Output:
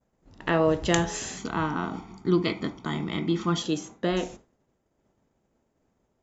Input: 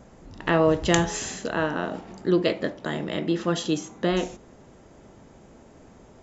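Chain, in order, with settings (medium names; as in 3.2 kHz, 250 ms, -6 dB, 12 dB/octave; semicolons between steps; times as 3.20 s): expander -37 dBFS; 1.37–3.62 s: comb 0.9 ms, depth 85%; trim -2.5 dB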